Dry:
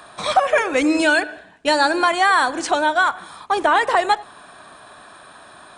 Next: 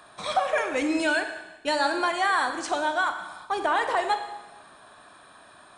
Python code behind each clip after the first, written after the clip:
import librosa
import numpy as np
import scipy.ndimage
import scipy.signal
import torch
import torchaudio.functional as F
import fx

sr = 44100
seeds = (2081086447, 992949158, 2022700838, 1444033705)

y = fx.rev_schroeder(x, sr, rt60_s=1.1, comb_ms=28, drr_db=7.0)
y = F.gain(torch.from_numpy(y), -8.5).numpy()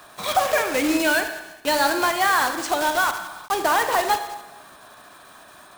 y = fx.block_float(x, sr, bits=3)
y = F.gain(torch.from_numpy(y), 4.0).numpy()